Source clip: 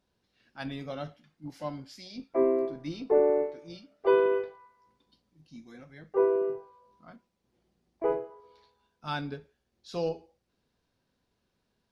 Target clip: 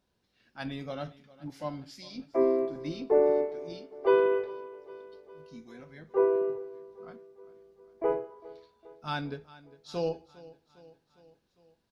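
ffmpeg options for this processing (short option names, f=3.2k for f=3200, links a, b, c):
-af "aecho=1:1:405|810|1215|1620|2025:0.106|0.0625|0.0369|0.0218|0.0128"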